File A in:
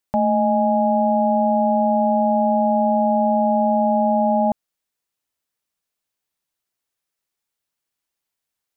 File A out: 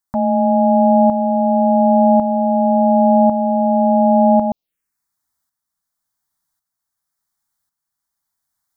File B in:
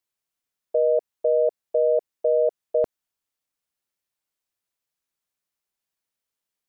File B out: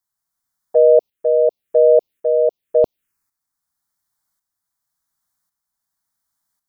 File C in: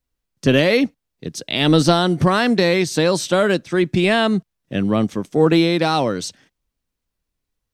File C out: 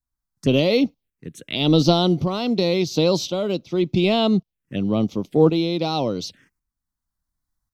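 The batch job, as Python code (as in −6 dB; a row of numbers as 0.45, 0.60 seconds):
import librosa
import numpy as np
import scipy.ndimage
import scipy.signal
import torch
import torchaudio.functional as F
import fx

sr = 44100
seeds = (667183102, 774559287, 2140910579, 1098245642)

y = fx.env_phaser(x, sr, low_hz=460.0, high_hz=1700.0, full_db=-20.0)
y = fx.tremolo_shape(y, sr, shape='saw_up', hz=0.91, depth_pct=60)
y = y * 10.0 ** (-3 / 20.0) / np.max(np.abs(y))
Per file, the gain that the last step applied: +8.5, +12.0, +1.0 decibels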